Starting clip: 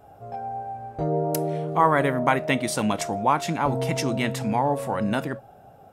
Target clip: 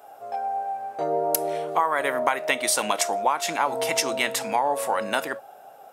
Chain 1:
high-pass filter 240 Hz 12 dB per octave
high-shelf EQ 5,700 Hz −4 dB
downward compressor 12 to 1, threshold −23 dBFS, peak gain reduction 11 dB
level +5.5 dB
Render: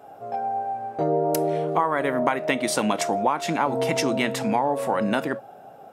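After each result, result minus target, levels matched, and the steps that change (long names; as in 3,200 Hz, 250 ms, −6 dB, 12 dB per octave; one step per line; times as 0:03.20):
250 Hz band +9.5 dB; 8,000 Hz band −6.5 dB
change: high-pass filter 570 Hz 12 dB per octave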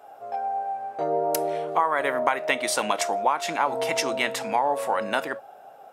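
8,000 Hz band −4.5 dB
change: high-shelf EQ 5,700 Hz +6 dB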